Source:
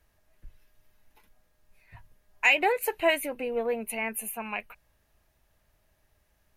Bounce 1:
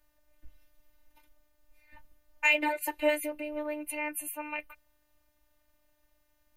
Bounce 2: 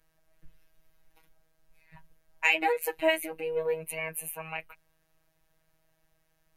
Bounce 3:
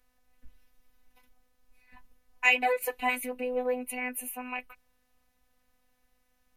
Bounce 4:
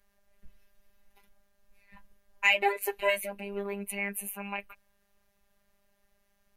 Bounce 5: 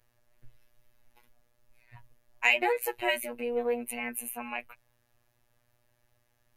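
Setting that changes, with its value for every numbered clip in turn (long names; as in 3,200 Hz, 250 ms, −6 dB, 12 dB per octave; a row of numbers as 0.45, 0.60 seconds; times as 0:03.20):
phases set to zero, frequency: 300, 160, 250, 200, 120 Hertz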